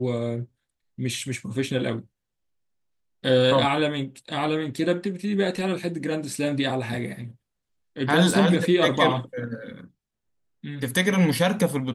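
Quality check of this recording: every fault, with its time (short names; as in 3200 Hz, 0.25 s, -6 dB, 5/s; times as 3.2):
8.31 gap 2.4 ms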